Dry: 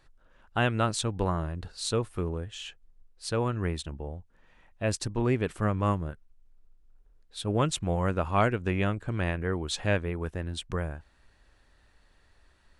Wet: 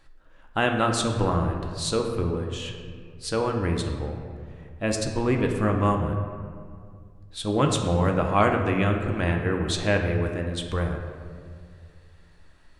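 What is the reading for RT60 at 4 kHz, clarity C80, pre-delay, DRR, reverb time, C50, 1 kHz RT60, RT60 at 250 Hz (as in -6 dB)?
1.2 s, 6.5 dB, 3 ms, 2.5 dB, 2.1 s, 5.0 dB, 1.9 s, 2.5 s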